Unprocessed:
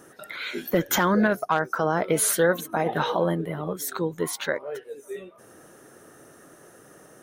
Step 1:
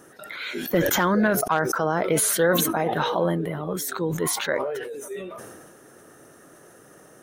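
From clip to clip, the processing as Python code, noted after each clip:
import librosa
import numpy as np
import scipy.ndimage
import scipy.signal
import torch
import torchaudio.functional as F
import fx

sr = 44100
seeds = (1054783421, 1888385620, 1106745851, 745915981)

y = fx.sustainer(x, sr, db_per_s=31.0)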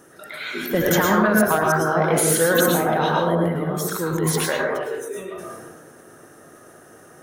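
y = fx.rev_plate(x, sr, seeds[0], rt60_s=0.68, hf_ratio=0.45, predelay_ms=95, drr_db=-1.0)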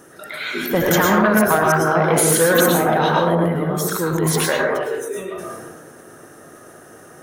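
y = fx.transformer_sat(x, sr, knee_hz=690.0)
y = y * librosa.db_to_amplitude(4.0)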